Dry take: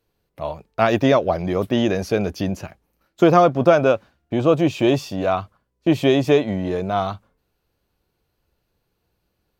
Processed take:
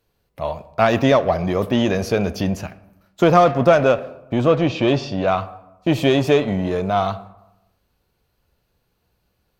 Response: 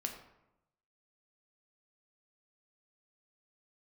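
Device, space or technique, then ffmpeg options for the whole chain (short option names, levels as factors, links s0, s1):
saturated reverb return: -filter_complex "[0:a]asettb=1/sr,asplit=3[s0][s1][s2];[s0]atrim=end=4.474[s3];[s1]atrim=start=4.47:end=5.28,asetpts=PTS-STARTPTS,afade=t=in:d=0.004:c=qsin,afade=t=out:st=0.806:d=0.004:c=qsin,lowpass=f=5400:w=0.5412,lowpass=f=5400:w=1.3066[s4];[s2]atrim=start=5.276[s5];[s3][s4]acrossfade=d=0.004:c1=hsin:c2=qsin[s6];[s6][s5]acrossfade=d=0.004:c1=qsin:c2=hsin,asplit=2[s7][s8];[1:a]atrim=start_sample=2205[s9];[s8][s9]afir=irnorm=-1:irlink=0,asoftclip=type=tanh:threshold=0.126,volume=0.596[s10];[s7][s10]amix=inputs=2:normalize=0,equalizer=f=340:t=o:w=0.64:g=-4"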